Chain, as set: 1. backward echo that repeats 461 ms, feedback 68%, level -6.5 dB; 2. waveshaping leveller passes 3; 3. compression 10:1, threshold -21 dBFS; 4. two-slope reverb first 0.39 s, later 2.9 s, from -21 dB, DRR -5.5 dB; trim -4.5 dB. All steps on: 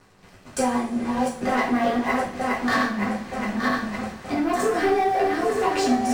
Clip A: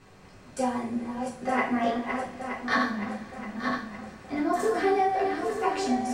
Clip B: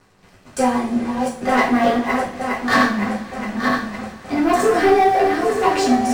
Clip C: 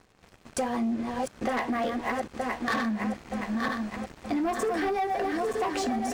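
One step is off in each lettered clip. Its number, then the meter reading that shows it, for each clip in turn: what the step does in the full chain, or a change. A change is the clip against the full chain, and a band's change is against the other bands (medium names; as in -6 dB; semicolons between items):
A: 2, crest factor change +2.0 dB; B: 3, mean gain reduction 3.5 dB; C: 4, momentary loudness spread change -2 LU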